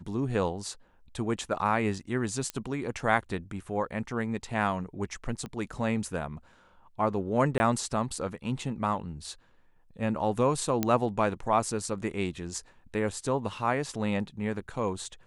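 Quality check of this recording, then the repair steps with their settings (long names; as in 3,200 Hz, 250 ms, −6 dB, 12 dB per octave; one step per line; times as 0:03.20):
0:02.50: click −17 dBFS
0:05.46: click −25 dBFS
0:07.58–0:07.60: drop-out 20 ms
0:10.83: click −11 dBFS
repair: click removal
repair the gap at 0:07.58, 20 ms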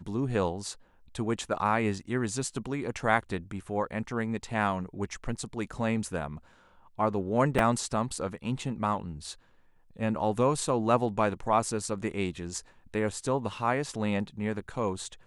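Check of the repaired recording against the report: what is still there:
0:05.46: click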